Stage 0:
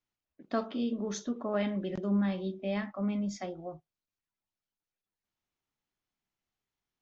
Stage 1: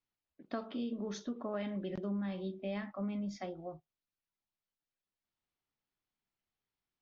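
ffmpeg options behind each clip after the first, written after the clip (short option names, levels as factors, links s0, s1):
-af "lowpass=f=5500:w=0.5412,lowpass=f=5500:w=1.3066,acompressor=threshold=0.0282:ratio=5,volume=0.708"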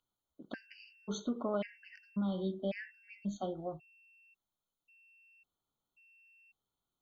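-af "aeval=exprs='val(0)+0.000501*sin(2*PI*2700*n/s)':c=same,afftfilt=real='re*gt(sin(2*PI*0.92*pts/sr)*(1-2*mod(floor(b*sr/1024/1500),2)),0)':imag='im*gt(sin(2*PI*0.92*pts/sr)*(1-2*mod(floor(b*sr/1024/1500),2)),0)':win_size=1024:overlap=0.75,volume=1.58"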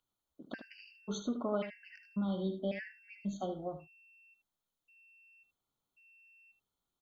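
-af "aecho=1:1:76:0.316"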